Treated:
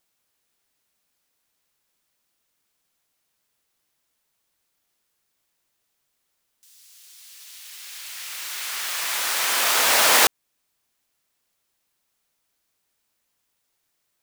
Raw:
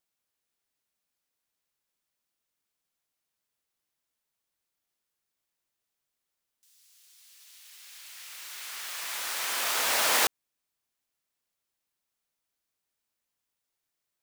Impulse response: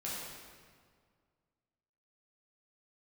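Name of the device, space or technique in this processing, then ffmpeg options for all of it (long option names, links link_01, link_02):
parallel compression: -filter_complex "[0:a]asplit=2[link_01][link_02];[link_02]acompressor=threshold=-36dB:ratio=6,volume=-9dB[link_03];[link_01][link_03]amix=inputs=2:normalize=0,volume=7.5dB"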